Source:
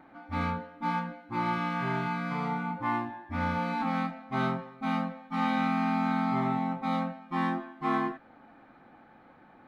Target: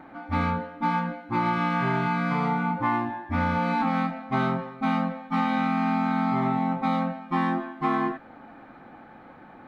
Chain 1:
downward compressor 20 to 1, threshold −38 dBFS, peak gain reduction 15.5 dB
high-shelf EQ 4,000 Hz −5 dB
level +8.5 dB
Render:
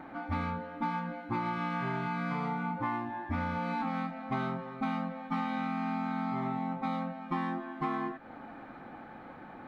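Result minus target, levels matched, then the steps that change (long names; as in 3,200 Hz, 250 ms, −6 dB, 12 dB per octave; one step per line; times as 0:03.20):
downward compressor: peak gain reduction +9 dB
change: downward compressor 20 to 1, threshold −28.5 dBFS, peak gain reduction 6.5 dB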